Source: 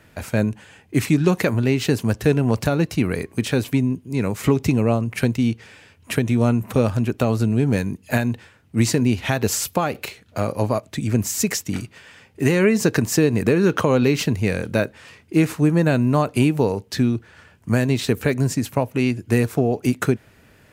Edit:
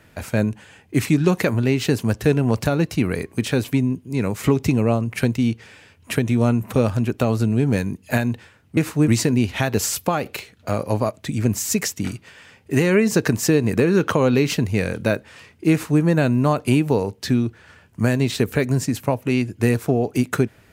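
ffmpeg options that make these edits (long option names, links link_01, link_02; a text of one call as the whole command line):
ffmpeg -i in.wav -filter_complex "[0:a]asplit=3[link_01][link_02][link_03];[link_01]atrim=end=8.772[link_04];[link_02]atrim=start=15.398:end=15.712[link_05];[link_03]atrim=start=8.768[link_06];[link_04][link_05]acrossfade=duration=0.004:curve1=hsin:curve2=hsin[link_07];[link_07][link_06]acrossfade=duration=0.004:curve1=hsin:curve2=hsin" out.wav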